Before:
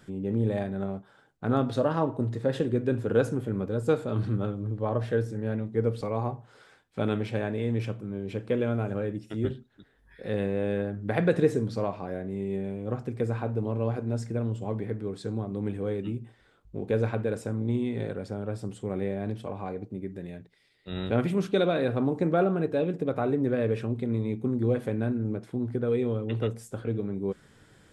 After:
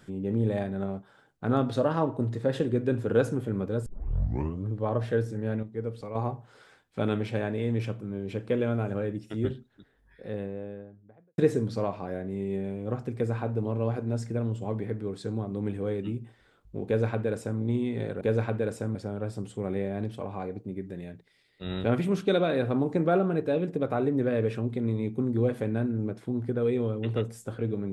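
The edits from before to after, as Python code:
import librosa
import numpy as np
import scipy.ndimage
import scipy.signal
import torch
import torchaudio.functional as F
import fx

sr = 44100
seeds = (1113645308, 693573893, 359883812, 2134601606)

y = fx.studio_fade_out(x, sr, start_s=9.47, length_s=1.91)
y = fx.edit(y, sr, fx.tape_start(start_s=3.86, length_s=0.8),
    fx.clip_gain(start_s=5.63, length_s=0.52, db=-7.0),
    fx.duplicate(start_s=16.86, length_s=0.74, to_s=18.21), tone=tone)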